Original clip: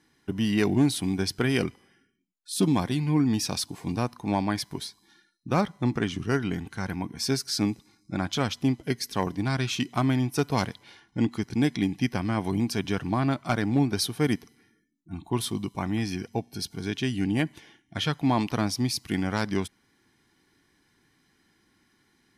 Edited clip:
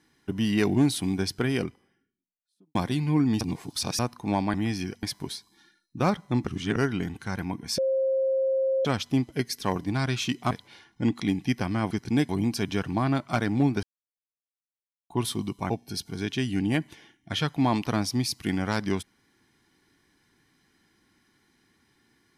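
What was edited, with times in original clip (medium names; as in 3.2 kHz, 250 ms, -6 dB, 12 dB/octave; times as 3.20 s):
1.08–2.75 s: studio fade out
3.41–3.99 s: reverse
5.98–6.27 s: reverse
7.29–8.36 s: bleep 532 Hz -21.5 dBFS
10.02–10.67 s: delete
11.36–11.74 s: move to 12.45 s
13.99–15.26 s: mute
15.86–16.35 s: move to 4.54 s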